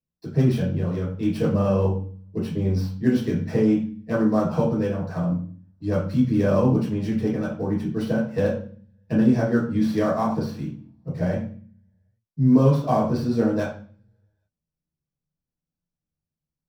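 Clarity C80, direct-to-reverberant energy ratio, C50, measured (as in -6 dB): 10.0 dB, -8.5 dB, 5.0 dB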